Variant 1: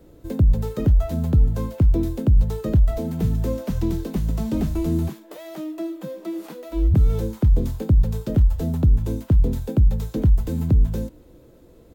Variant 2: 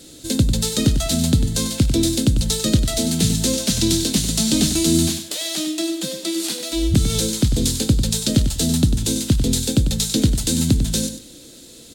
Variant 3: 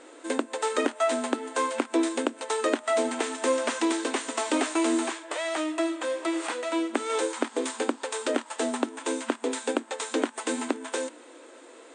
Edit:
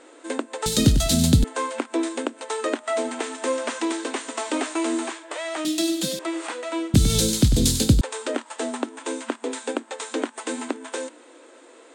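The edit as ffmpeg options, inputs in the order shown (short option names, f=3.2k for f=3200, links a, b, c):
-filter_complex "[1:a]asplit=3[a][b][c];[2:a]asplit=4[d][e][f][g];[d]atrim=end=0.662[h];[a]atrim=start=0.658:end=1.442[i];[e]atrim=start=1.438:end=5.652[j];[b]atrim=start=5.648:end=6.192[k];[f]atrim=start=6.188:end=6.942[l];[c]atrim=start=6.938:end=8.012[m];[g]atrim=start=8.008[n];[h][i]acrossfade=d=0.004:c1=hsin:c2=hsin[o];[o][j]acrossfade=d=0.004:c1=hsin:c2=hsin[p];[p][k]acrossfade=d=0.004:c1=hsin:c2=hsin[q];[q][l]acrossfade=d=0.004:c1=hsin:c2=hsin[r];[r][m]acrossfade=d=0.004:c1=hsin:c2=hsin[s];[s][n]acrossfade=d=0.004:c1=hsin:c2=hsin"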